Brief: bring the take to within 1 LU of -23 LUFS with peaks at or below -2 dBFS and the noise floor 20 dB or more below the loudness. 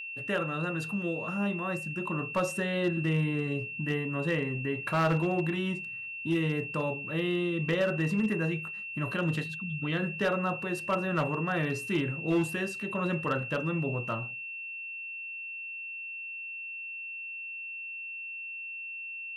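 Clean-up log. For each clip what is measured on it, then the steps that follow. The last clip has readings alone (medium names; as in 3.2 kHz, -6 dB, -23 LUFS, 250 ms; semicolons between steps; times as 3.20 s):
clipped samples 0.3%; clipping level -21.0 dBFS; steady tone 2.7 kHz; tone level -37 dBFS; loudness -31.5 LUFS; peak level -21.0 dBFS; loudness target -23.0 LUFS
-> clip repair -21 dBFS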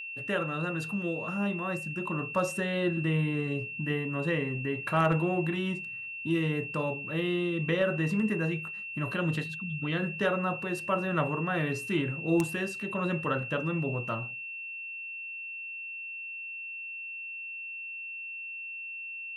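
clipped samples 0.0%; steady tone 2.7 kHz; tone level -37 dBFS
-> band-stop 2.7 kHz, Q 30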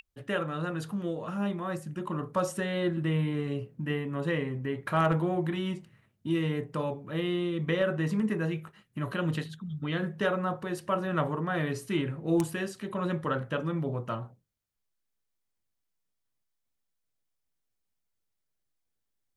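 steady tone not found; loudness -31.5 LUFS; peak level -12.5 dBFS; loudness target -23.0 LUFS
-> trim +8.5 dB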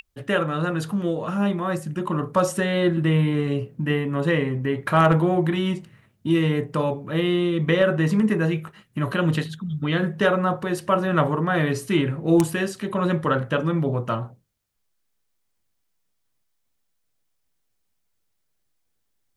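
loudness -23.0 LUFS; peak level -4.0 dBFS; noise floor -72 dBFS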